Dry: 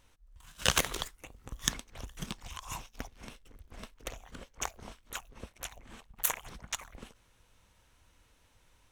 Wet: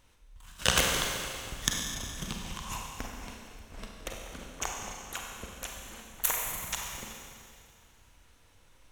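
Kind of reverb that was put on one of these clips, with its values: Schroeder reverb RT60 2.3 s, combs from 32 ms, DRR 0 dB; trim +1 dB

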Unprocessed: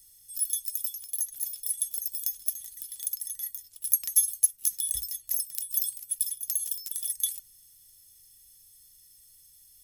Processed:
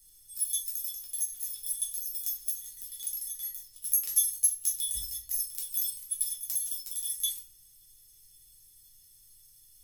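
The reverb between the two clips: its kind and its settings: simulated room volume 46 m³, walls mixed, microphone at 0.95 m; trim -6 dB

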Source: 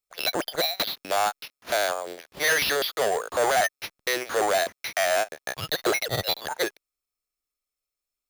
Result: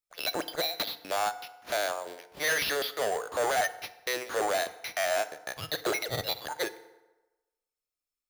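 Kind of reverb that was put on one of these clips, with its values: FDN reverb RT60 1.1 s, low-frequency decay 0.8×, high-frequency decay 0.65×, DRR 12 dB; trim -5.5 dB

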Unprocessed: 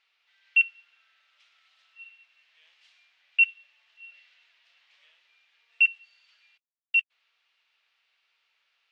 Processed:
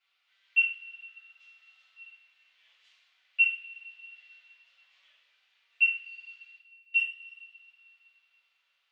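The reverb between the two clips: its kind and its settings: two-slope reverb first 0.39 s, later 2.4 s, from -18 dB, DRR -8.5 dB; trim -12 dB

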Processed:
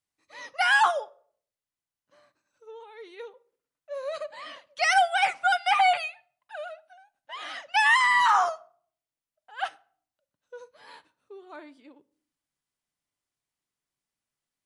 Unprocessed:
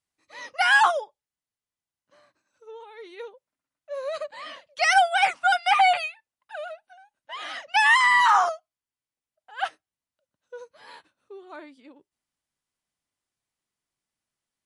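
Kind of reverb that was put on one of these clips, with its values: simulated room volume 610 m³, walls furnished, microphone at 0.34 m; trim -2.5 dB

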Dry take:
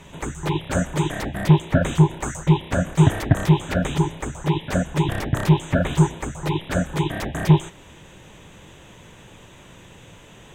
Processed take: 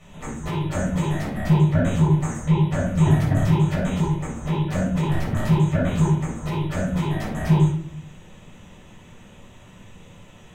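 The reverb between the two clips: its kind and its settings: simulated room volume 600 m³, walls furnished, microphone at 6.5 m; trim -12 dB

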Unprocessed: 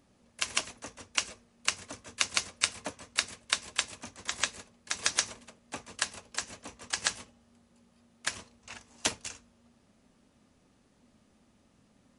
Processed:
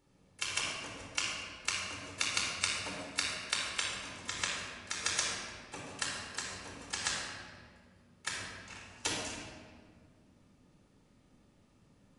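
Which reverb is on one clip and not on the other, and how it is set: simulated room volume 2600 m³, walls mixed, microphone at 4.3 m; trim -8 dB

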